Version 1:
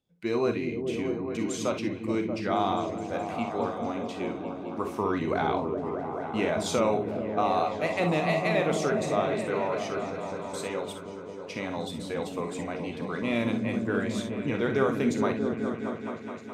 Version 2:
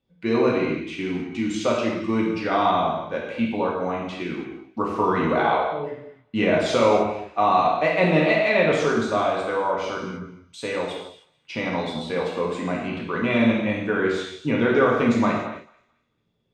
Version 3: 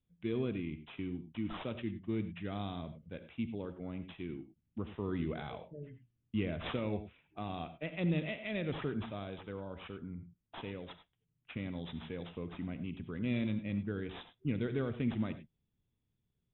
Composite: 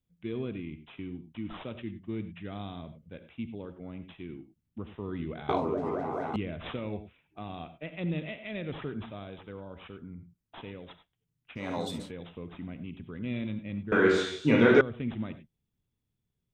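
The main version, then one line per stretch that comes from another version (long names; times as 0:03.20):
3
0:05.49–0:06.36: punch in from 1
0:11.63–0:12.04: punch in from 1, crossfade 0.16 s
0:13.92–0:14.81: punch in from 2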